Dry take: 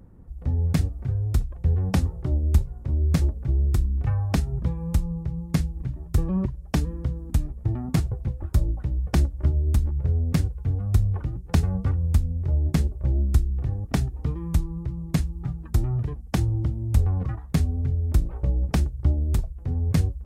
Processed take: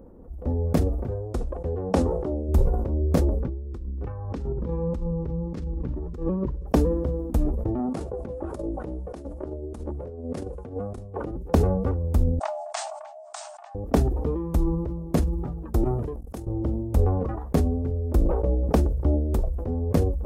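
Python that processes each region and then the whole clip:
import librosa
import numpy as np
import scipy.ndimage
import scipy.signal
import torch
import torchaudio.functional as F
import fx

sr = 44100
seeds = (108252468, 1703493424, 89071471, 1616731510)

y = fx.chain(x, sr, fx.lowpass(hz=10000.0, slope=24),
    fx.low_shelf(hz=160.0, db=-8.5), at=(1.11, 2.49))
y = fx.chain(y, sr, fx.lowpass(hz=5400.0, slope=12),
    fx.peak_eq(hz=670.0, db=-10.0, octaves=0.45),
    fx.over_compress(threshold_db=-28.0, ratio=-1.0), at=(3.4, 6.67))
y = fx.chain(y, sr, fx.highpass(hz=230.0, slope=6),
    fx.over_compress(threshold_db=-34.0, ratio=-0.5),
    fx.resample_bad(factor=2, down='none', up='filtered'), at=(7.79, 11.31))
y = fx.chain(y, sr, fx.brickwall_bandpass(low_hz=610.0, high_hz=9000.0),
    fx.high_shelf(hz=2800.0, db=7.5), at=(12.39, 13.75))
y = fx.chain(y, sr, fx.peak_eq(hz=9800.0, db=9.0, octaves=1.5),
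    fx.level_steps(step_db=19),
    fx.transient(attack_db=3, sustain_db=-3), at=(15.84, 16.47))
y = fx.graphic_eq_10(y, sr, hz=(125, 250, 500, 1000, 2000, 4000, 8000), db=(-10, 5, 12, 3, -6, -5, -5))
y = fx.sustainer(y, sr, db_per_s=39.0)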